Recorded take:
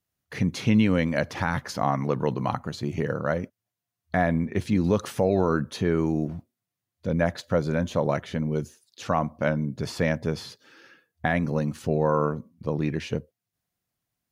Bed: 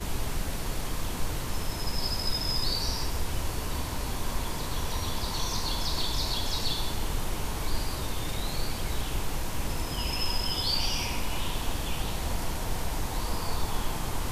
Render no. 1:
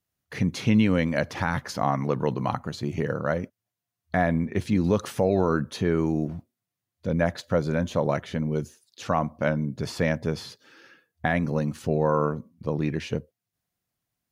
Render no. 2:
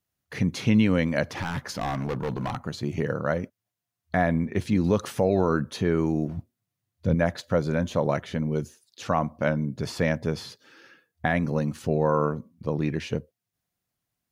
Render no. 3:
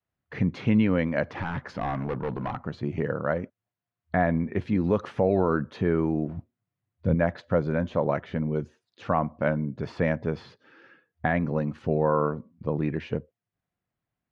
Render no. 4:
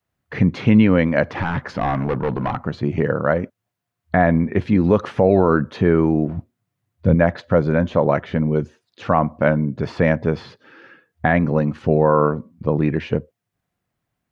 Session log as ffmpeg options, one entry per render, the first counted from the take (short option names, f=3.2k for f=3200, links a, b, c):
-af anull
-filter_complex "[0:a]asettb=1/sr,asplit=3[a][b][c];[a]atrim=end=1.264[d];[b]atrim=start=1.26:end=2.63,asetpts=PTS-STARTPTS,afade=t=in:d=0.004:c=qsin,afade=t=out:st=1.366:d=0.004:c=qsin,asoftclip=type=hard:threshold=-24.5dB[e];[c]atrim=start=2.626[f];[d][e]acrossfade=d=0.004:c1=hsin:c2=qsin[g];[g][f]acrossfade=d=0.004:c1=qsin:c2=hsin,asettb=1/sr,asplit=3[h][i][j];[h]atrim=end=6.374[k];[i]atrim=start=6.37:end=7.15,asetpts=PTS-STARTPTS,afade=t=in:d=0.004:c=qsin,afade=t=out:st=0.776:d=0.004:c=qsin,equalizer=f=93:t=o:w=1.9:g=8.5[l];[j]atrim=start=7.146[m];[k][l]acrossfade=d=0.004:c1=hsin:c2=qsin[n];[n][m]acrossfade=d=0.004:c1=qsin:c2=hsin"
-af "lowpass=2.2k,adynamicequalizer=threshold=0.0158:dfrequency=120:dqfactor=0.7:tfrequency=120:tqfactor=0.7:attack=5:release=100:ratio=0.375:range=2:mode=cutabove:tftype=bell"
-af "volume=8.5dB,alimiter=limit=-3dB:level=0:latency=1"